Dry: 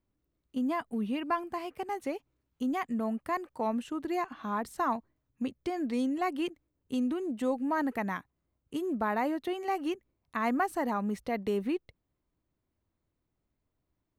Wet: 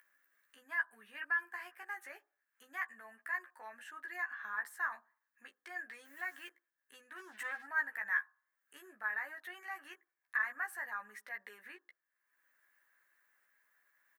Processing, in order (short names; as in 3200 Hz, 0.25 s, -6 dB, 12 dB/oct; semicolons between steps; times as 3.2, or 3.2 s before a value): 6.05–6.48 level-crossing sampler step -50 dBFS; bell 3800 Hz -13.5 dB 2.3 oct; 7.16–7.66 sample leveller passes 2; limiter -29.5 dBFS, peak gain reduction 9.5 dB; upward compressor, threshold -50 dBFS; resonant high-pass 1700 Hz, resonance Q 11; doubler 14 ms -4 dB; on a send: Butterworth band-stop 2300 Hz, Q 0.95 + reverb RT60 0.45 s, pre-delay 3 ms, DRR 16.5 dB; on the sum: gain -1 dB